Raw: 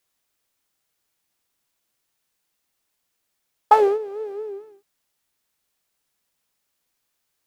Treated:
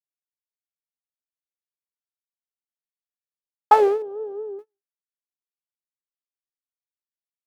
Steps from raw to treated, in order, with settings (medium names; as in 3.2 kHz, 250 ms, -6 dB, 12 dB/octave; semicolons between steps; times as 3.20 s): gate -36 dBFS, range -36 dB; 4.02–4.59 s: boxcar filter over 20 samples